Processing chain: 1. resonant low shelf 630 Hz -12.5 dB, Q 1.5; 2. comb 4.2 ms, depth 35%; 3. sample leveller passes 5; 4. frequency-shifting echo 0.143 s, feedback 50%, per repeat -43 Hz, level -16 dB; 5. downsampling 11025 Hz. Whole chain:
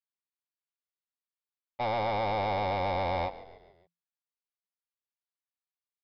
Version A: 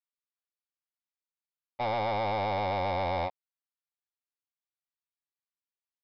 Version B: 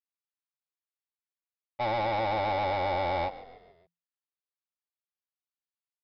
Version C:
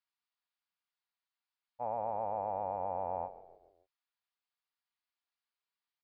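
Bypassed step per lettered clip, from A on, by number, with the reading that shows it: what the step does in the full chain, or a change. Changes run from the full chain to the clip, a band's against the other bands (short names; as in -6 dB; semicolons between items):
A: 4, momentary loudness spread change -2 LU; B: 2, 125 Hz band -2.5 dB; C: 3, 125 Hz band -8.5 dB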